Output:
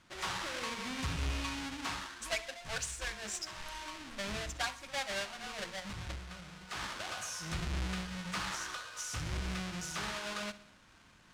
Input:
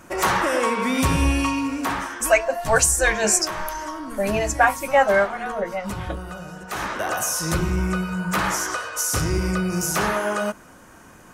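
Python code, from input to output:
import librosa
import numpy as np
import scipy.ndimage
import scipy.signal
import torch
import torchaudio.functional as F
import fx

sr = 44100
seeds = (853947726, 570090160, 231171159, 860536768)

y = fx.halfwave_hold(x, sr)
y = fx.tone_stack(y, sr, knobs='5-5-5')
y = fx.rider(y, sr, range_db=4, speed_s=0.5)
y = fx.air_absorb(y, sr, metres=75.0)
y = fx.echo_feedback(y, sr, ms=63, feedback_pct=58, wet_db=-18.0)
y = y * librosa.db_to_amplitude(-7.0)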